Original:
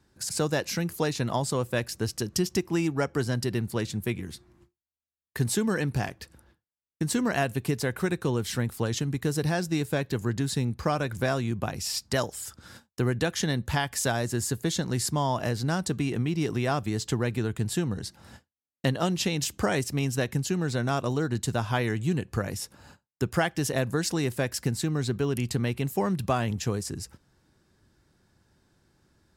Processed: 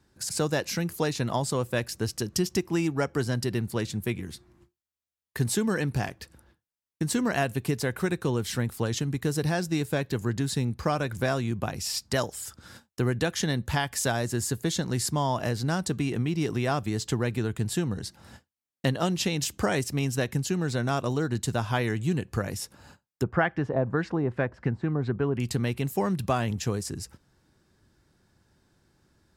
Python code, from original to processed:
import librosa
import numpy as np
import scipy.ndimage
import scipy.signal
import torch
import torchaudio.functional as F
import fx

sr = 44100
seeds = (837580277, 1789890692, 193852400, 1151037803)

y = fx.filter_lfo_lowpass(x, sr, shape='sine', hz=fx.line((23.22, 1.2), (25.39, 7.5)), low_hz=830.0, high_hz=1900.0, q=1.3, at=(23.22, 25.39), fade=0.02)